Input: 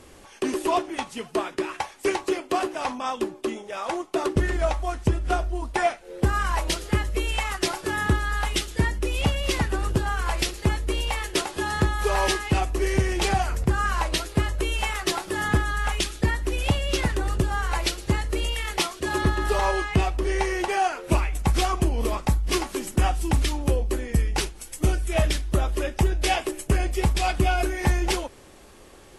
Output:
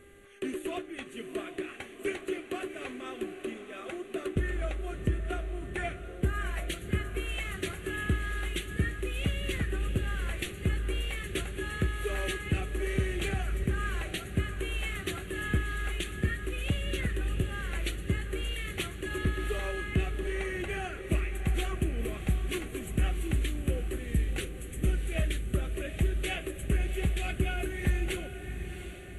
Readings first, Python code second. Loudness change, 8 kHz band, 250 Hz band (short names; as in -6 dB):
-8.0 dB, -11.5 dB, -7.0 dB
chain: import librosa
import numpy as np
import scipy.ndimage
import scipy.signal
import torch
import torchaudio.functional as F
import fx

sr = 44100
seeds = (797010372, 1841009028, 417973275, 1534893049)

y = fx.dmg_buzz(x, sr, base_hz=400.0, harmonics=5, level_db=-48.0, tilt_db=-5, odd_only=False)
y = fx.fixed_phaser(y, sr, hz=2200.0, stages=4)
y = fx.echo_diffused(y, sr, ms=728, feedback_pct=52, wet_db=-9.5)
y = F.gain(torch.from_numpy(y), -6.5).numpy()